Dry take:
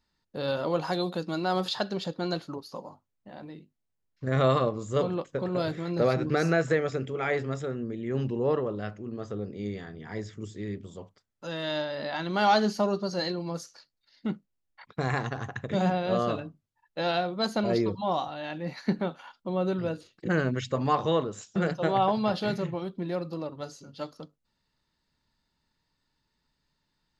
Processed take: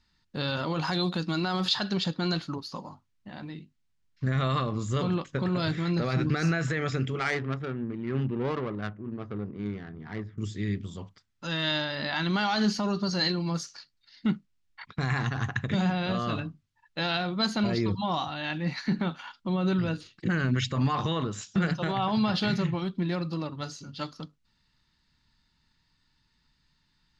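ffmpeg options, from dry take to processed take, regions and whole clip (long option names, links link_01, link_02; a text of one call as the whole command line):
ffmpeg -i in.wav -filter_complex "[0:a]asettb=1/sr,asplit=3[link_01][link_02][link_03];[link_01]atrim=end=7.194[link_04];[link_02]atrim=start=7.19:end=10.38,asetpts=PTS-STARTPTS,afade=type=in:duration=0.004:curve=qsin,afade=type=out:start_time=3.186:duration=0.004:curve=qsin,adynamicsmooth=sensitivity=3:basefreq=760,lowshelf=frequency=180:gain=-8.5[link_05];[link_03]atrim=start=10.376[link_06];[link_04][link_05]acrossfade=duration=0.004:curve1=hsin:curve2=qsin[link_07];[link_07][link_06]acrossfade=duration=0.004:curve1=qsin:curve2=hsin,lowpass=6100,alimiter=limit=-21.5dB:level=0:latency=1:release=35,equalizer=frequency=530:width_type=o:width=1.5:gain=-13,volume=8.5dB" out.wav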